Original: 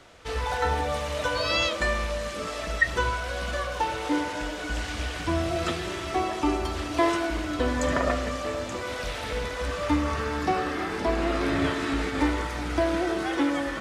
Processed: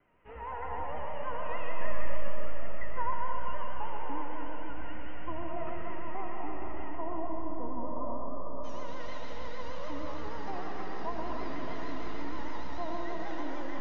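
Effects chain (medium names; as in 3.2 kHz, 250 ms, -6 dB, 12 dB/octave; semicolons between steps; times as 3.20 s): tracing distortion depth 0.1 ms; peaking EQ 210 Hz +7.5 dB 1.2 oct; peak limiter -16.5 dBFS, peak gain reduction 7.5 dB; dynamic bell 740 Hz, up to +8 dB, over -42 dBFS, Q 1; feedback comb 980 Hz, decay 0.34 s, mix 90%; multi-head delay 62 ms, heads second and third, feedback 45%, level -10.5 dB; vibrato 6.5 Hz 98 cents; steep low-pass 2.8 kHz 72 dB/octave, from 6.95 s 1.2 kHz, from 8.63 s 6.7 kHz; algorithmic reverb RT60 3.9 s, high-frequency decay 0.85×, pre-delay 45 ms, DRR 1.5 dB; trim -1 dB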